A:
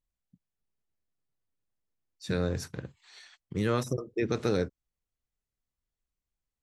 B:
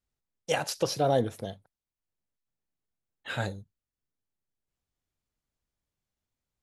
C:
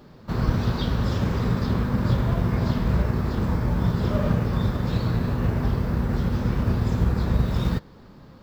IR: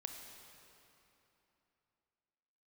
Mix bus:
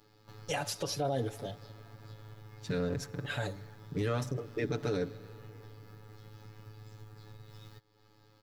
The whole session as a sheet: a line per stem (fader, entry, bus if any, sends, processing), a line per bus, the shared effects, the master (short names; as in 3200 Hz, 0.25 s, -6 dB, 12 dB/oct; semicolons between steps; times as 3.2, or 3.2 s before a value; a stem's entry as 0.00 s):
-4.5 dB, 0.40 s, send -10.5 dB, Wiener smoothing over 15 samples
-5.0 dB, 0.00 s, send -16.5 dB, dry
-15.5 dB, 0.00 s, no send, high shelf 2200 Hz +11 dB; compressor 2.5:1, threshold -37 dBFS, peak gain reduction 15 dB; robotiser 107 Hz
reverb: on, RT60 3.1 s, pre-delay 24 ms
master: comb 7 ms, depth 77%; limiter -23.5 dBFS, peak gain reduction 8.5 dB